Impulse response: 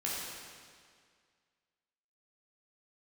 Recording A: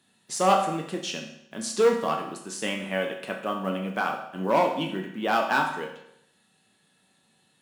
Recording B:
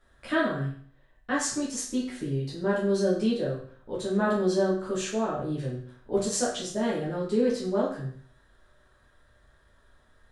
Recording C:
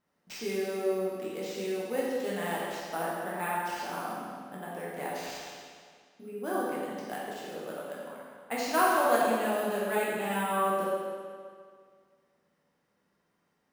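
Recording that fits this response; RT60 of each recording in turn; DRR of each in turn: C; 0.75, 0.55, 2.0 s; 1.0, -8.0, -6.5 dB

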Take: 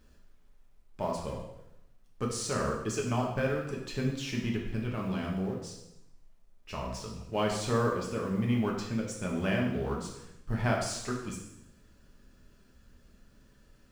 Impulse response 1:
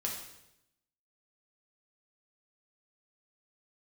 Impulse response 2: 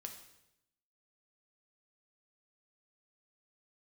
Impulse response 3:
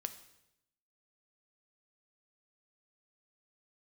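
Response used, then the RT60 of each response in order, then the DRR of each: 1; 0.85, 0.85, 0.85 s; -2.0, 3.5, 9.0 dB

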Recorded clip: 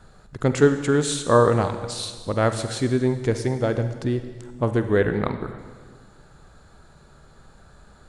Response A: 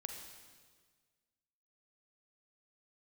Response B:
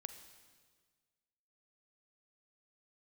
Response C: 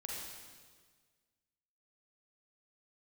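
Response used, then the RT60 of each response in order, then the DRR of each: B; 1.6, 1.6, 1.6 s; 3.5, 9.0, -3.5 dB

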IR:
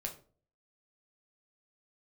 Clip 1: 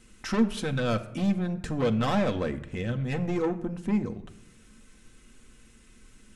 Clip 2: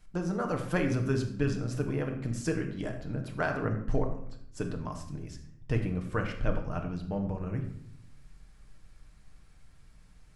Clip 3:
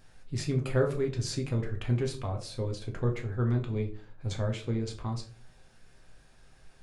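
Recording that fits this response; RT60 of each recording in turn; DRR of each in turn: 3; 0.90, 0.65, 0.45 s; 5.0, 2.5, 1.5 dB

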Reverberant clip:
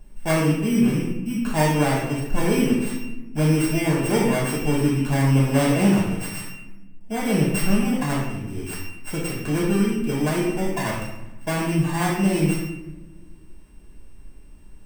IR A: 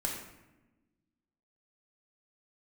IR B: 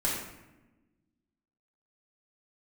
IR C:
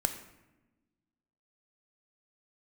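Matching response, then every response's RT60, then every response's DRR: B; 1.1, 1.1, 1.1 s; -1.5, -6.0, 7.0 dB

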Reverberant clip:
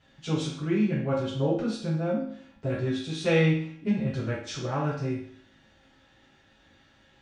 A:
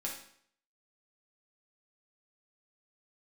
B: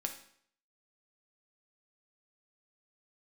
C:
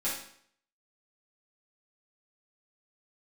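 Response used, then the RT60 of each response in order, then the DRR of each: C; 0.60, 0.60, 0.60 s; -3.0, 3.5, -10.0 dB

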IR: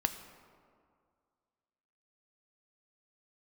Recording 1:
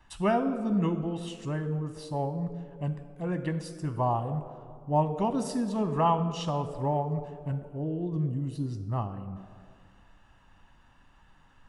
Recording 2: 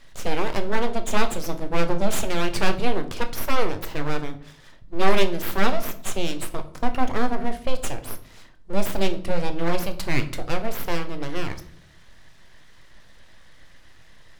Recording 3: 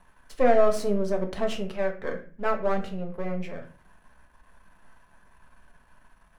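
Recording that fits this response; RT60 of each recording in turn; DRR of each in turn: 1; 2.1, 0.65, 0.40 s; 9.0, 7.5, 3.0 dB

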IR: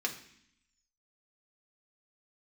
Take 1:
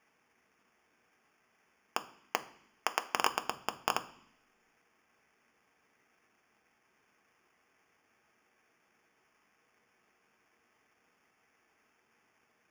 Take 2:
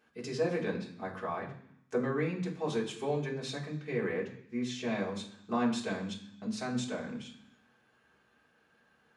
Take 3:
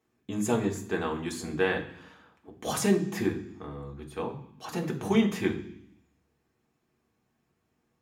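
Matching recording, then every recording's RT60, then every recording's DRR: 3; 0.65, 0.65, 0.65 s; 8.0, -4.0, 0.5 dB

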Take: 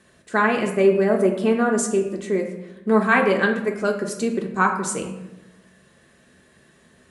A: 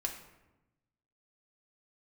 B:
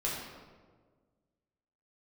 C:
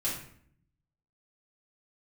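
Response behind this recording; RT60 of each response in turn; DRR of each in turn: A; 1.0, 1.6, 0.60 s; 1.0, -5.5, -8.0 dB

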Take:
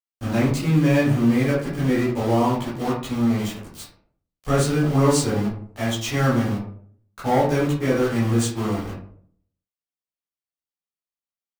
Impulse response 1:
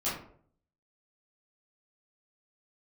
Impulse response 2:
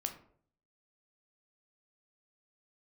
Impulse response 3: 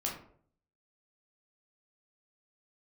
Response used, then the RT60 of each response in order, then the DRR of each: 1; 0.55, 0.55, 0.55 s; -11.0, 5.0, -2.5 dB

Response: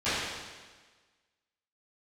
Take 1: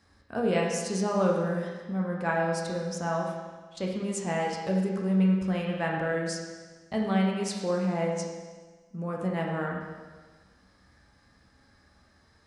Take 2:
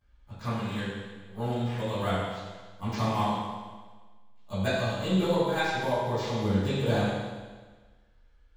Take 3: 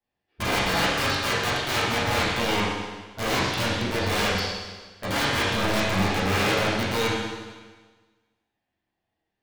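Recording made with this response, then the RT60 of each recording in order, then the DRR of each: 2; 1.4, 1.4, 1.4 s; -2.0, -19.0, -11.0 dB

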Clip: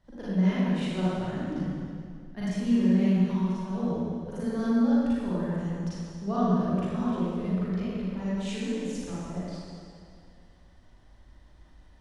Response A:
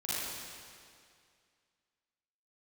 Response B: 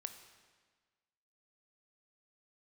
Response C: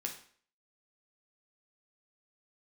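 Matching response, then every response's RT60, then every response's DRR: A; 2.2, 1.5, 0.50 s; -11.0, 7.5, 1.0 dB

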